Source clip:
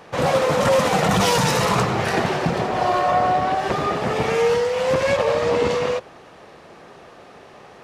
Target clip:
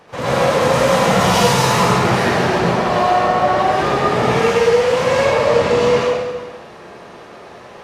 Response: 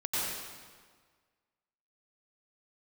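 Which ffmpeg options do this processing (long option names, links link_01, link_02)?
-filter_complex "[0:a]alimiter=limit=-11.5dB:level=0:latency=1[link_01];[1:a]atrim=start_sample=2205,asetrate=48510,aresample=44100[link_02];[link_01][link_02]afir=irnorm=-1:irlink=0"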